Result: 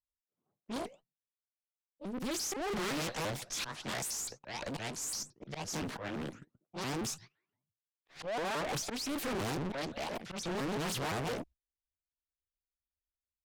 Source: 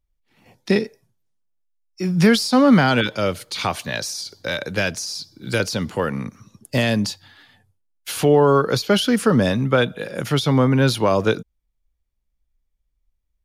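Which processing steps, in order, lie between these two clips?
pitch shifter swept by a sawtooth +9.5 semitones, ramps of 171 ms
noise gate −42 dBFS, range −27 dB
volume swells 318 ms
tube saturation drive 34 dB, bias 0.45
low-pass that shuts in the quiet parts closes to 1,000 Hz, open at −35 dBFS
highs frequency-modulated by the lows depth 0.92 ms

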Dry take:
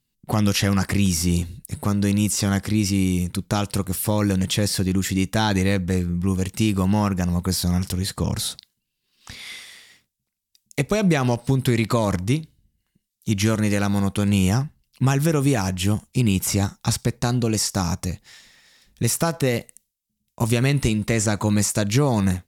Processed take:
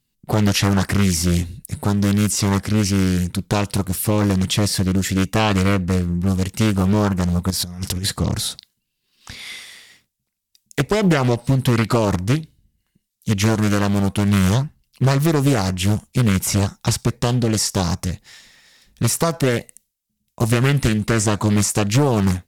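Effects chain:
0:07.50–0:08.18: compressor whose output falls as the input rises −26 dBFS, ratio −0.5
highs frequency-modulated by the lows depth 0.59 ms
level +3 dB

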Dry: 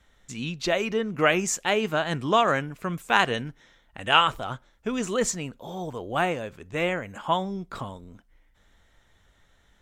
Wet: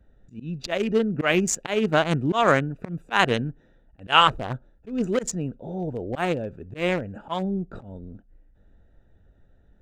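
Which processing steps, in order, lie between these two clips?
adaptive Wiener filter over 41 samples
volume swells 162 ms
level +6.5 dB

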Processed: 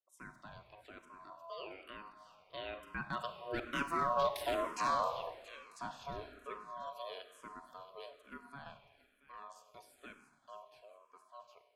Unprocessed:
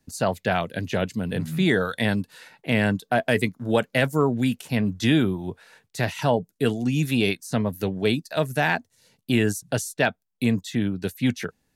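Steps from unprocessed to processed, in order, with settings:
source passing by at 0:04.42, 19 m/s, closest 4.3 metres
gate on every frequency bin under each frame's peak −30 dB strong
feedback echo with a high-pass in the loop 678 ms, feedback 39%, high-pass 950 Hz, level −14 dB
hard clipping −25 dBFS, distortion −10 dB
four-comb reverb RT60 1.4 s, combs from 32 ms, DRR 8.5 dB
ring modulation 840 Hz
frequency shifter mixed with the dry sound −1.1 Hz
level +1.5 dB

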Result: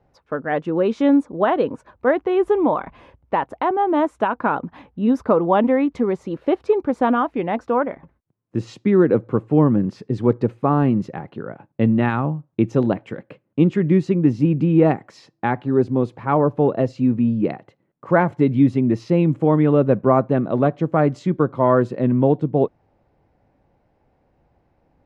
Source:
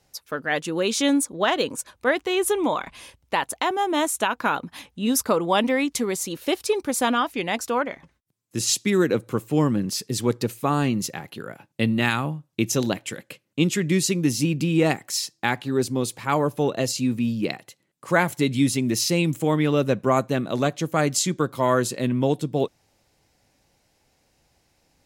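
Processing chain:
low-pass filter 1,100 Hz 12 dB per octave
level +5.5 dB

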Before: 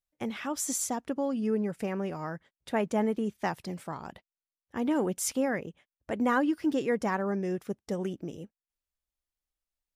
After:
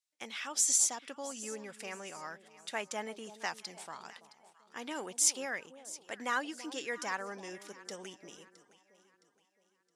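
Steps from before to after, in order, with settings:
meter weighting curve ITU-R 468
delay that swaps between a low-pass and a high-pass 333 ms, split 930 Hz, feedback 61%, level −13.5 dB
level −6 dB

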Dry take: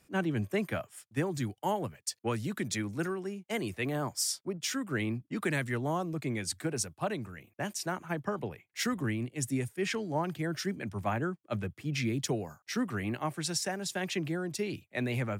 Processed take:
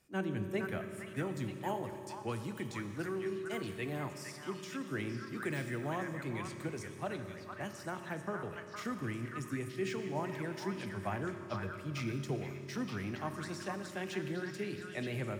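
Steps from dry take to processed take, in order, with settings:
de-essing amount 95%
echo through a band-pass that steps 462 ms, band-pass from 1,400 Hz, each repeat 1.4 octaves, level −1 dB
on a send at −6.5 dB: convolution reverb RT60 2.9 s, pre-delay 3 ms
on the sum: level −6.5 dB

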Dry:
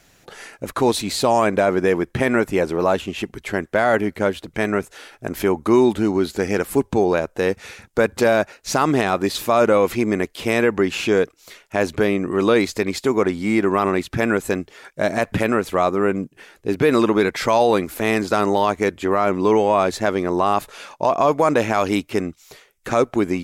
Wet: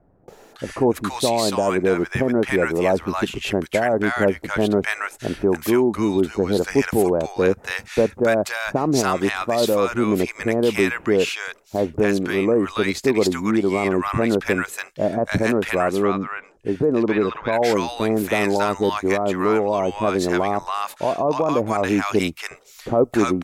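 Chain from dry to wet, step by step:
0:15.61–0:17.24: treble cut that deepens with the level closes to 2,900 Hz, closed at −14 dBFS
speech leveller within 5 dB 0.5 s
multiband delay without the direct sound lows, highs 280 ms, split 960 Hz

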